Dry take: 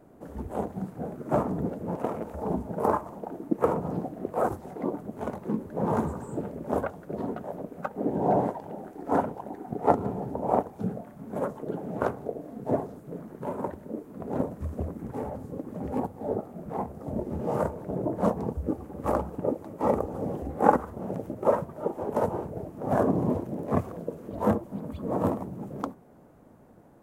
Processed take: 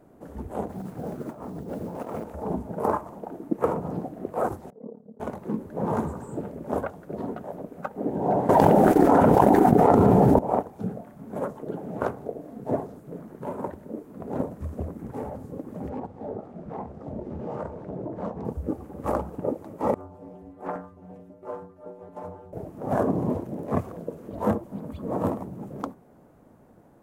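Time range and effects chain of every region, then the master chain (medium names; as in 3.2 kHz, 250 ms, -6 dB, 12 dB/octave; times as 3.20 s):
0.69–2.24 s: compressor with a negative ratio -35 dBFS + modulation noise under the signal 29 dB
4.70–5.20 s: two resonant band-passes 320 Hz, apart 1 oct + AM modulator 36 Hz, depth 60%
8.49–10.39 s: expander -38 dBFS + level flattener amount 100%
15.89–18.45 s: low-pass 4.7 kHz + compression 2.5:1, threshold -31 dBFS
19.94–22.53 s: treble shelf 6.1 kHz -6.5 dB + inharmonic resonator 89 Hz, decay 0.56 s, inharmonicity 0.008 + loudspeaker Doppler distortion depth 0.36 ms
whole clip: none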